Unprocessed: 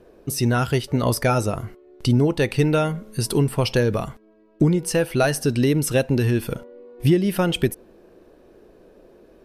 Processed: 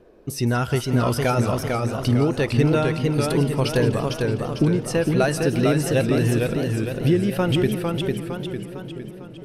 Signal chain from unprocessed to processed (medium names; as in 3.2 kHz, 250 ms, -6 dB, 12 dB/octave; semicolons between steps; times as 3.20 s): treble shelf 7 kHz -7 dB; on a send: two-band feedback delay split 550 Hz, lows 664 ms, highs 170 ms, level -13 dB; on the sum: modulated delay 454 ms, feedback 49%, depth 122 cents, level -3.5 dB; trim -1.5 dB